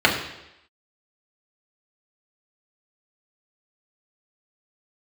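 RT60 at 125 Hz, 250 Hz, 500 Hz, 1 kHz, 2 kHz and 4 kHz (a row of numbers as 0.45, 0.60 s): 0.75, 0.85, 0.90, 0.85, 0.90, 0.90 s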